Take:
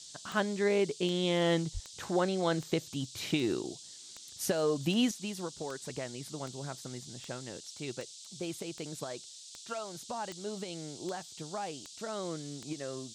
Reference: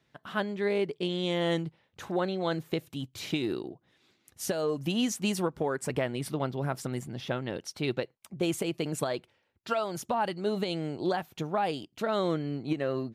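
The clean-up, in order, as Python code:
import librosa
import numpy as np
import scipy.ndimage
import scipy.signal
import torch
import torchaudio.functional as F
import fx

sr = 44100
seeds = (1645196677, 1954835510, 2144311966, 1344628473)

y = fx.fix_declick_ar(x, sr, threshold=10.0)
y = fx.highpass(y, sr, hz=140.0, slope=24, at=(1.73, 1.85), fade=0.02)
y = fx.noise_reduce(y, sr, print_start_s=3.77, print_end_s=4.27, reduce_db=19.0)
y = fx.gain(y, sr, db=fx.steps((0.0, 0.0), (5.11, 9.5)))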